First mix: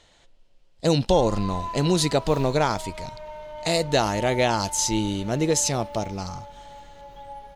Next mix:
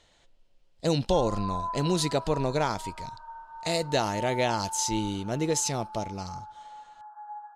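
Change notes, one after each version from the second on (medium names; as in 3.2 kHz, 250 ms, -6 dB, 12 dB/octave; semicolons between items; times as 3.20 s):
speech -5.0 dB; background: add brick-wall FIR band-pass 650–1700 Hz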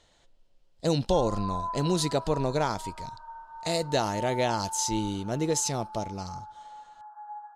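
master: add peaking EQ 2.4 kHz -3.5 dB 0.89 oct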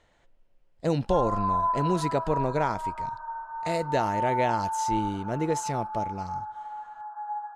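background +7.0 dB; master: add resonant high shelf 2.9 kHz -8 dB, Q 1.5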